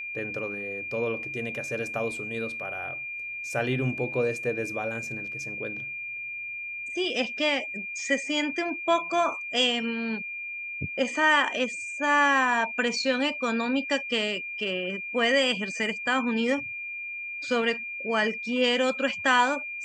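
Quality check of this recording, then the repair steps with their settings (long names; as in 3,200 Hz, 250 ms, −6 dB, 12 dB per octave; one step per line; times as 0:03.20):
whistle 2,400 Hz −33 dBFS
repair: notch filter 2,400 Hz, Q 30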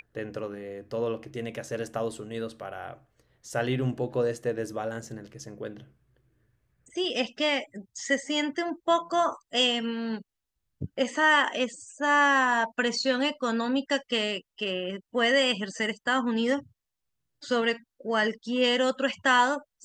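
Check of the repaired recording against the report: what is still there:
none of them is left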